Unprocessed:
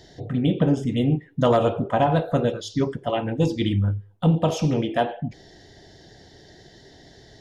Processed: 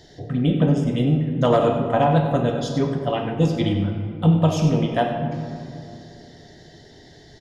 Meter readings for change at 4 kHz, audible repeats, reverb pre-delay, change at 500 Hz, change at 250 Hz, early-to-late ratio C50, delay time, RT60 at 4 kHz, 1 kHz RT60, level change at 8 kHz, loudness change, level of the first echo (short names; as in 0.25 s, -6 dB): +1.0 dB, 1, 7 ms, +1.5 dB, +2.5 dB, 5.0 dB, 96 ms, 1.3 s, 2.5 s, n/a, +2.0 dB, -11.5 dB